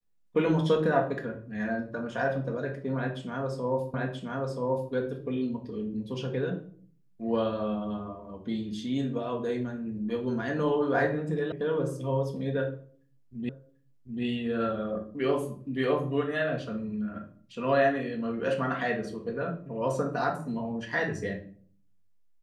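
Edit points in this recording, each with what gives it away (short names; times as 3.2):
3.94 repeat of the last 0.98 s
11.52 sound cut off
13.49 repeat of the last 0.74 s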